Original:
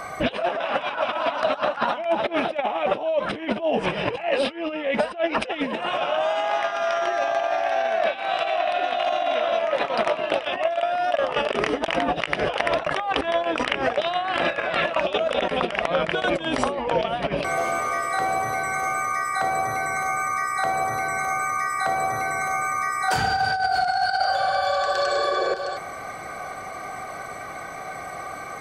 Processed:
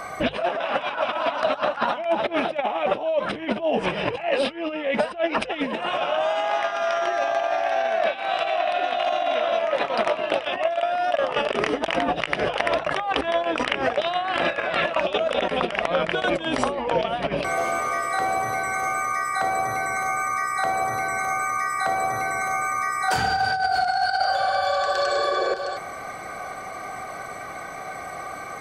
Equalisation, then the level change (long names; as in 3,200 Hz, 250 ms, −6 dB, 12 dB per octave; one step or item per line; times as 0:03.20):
mains-hum notches 50/100/150 Hz
0.0 dB